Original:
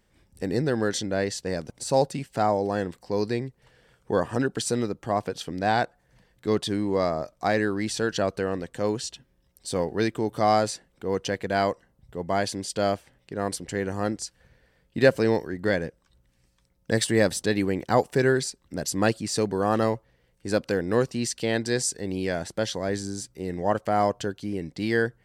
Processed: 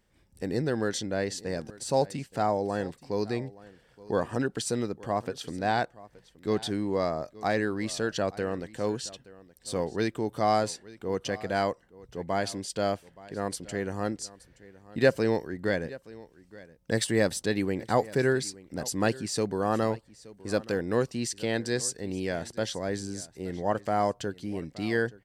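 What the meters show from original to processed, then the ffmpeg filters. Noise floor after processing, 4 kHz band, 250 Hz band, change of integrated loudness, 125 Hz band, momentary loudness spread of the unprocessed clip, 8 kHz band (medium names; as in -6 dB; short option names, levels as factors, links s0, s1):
-63 dBFS, -3.5 dB, -3.5 dB, -3.5 dB, -3.5 dB, 10 LU, -3.5 dB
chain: -af "aecho=1:1:873:0.1,volume=0.668"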